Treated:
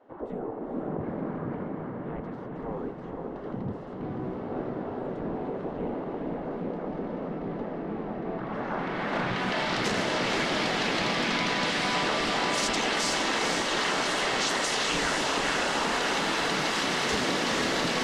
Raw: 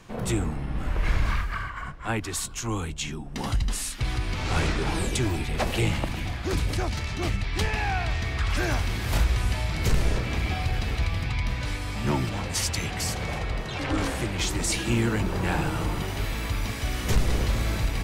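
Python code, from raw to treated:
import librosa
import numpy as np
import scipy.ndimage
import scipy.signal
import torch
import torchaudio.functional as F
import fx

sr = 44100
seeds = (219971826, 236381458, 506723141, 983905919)

p1 = fx.dynamic_eq(x, sr, hz=110.0, q=1.3, threshold_db=-40.0, ratio=4.0, max_db=5)
p2 = fx.spec_gate(p1, sr, threshold_db=-15, keep='weak')
p3 = fx.low_shelf(p2, sr, hz=80.0, db=-6.5)
p4 = fx.notch(p3, sr, hz=2400.0, q=6.9)
p5 = fx.over_compress(p4, sr, threshold_db=-39.0, ratio=-1.0)
p6 = p4 + F.gain(torch.from_numpy(p5), 2.0).numpy()
p7 = fx.filter_sweep_lowpass(p6, sr, from_hz=510.0, to_hz=6300.0, start_s=8.19, end_s=9.87, q=0.83)
p8 = 10.0 ** (-11.5 / 20.0) * np.tanh(p7 / 10.0 ** (-11.5 / 20.0))
p9 = p8 + fx.echo_diffused(p8, sr, ms=481, feedback_pct=71, wet_db=-3, dry=0)
y = fx.doppler_dist(p9, sr, depth_ms=0.2)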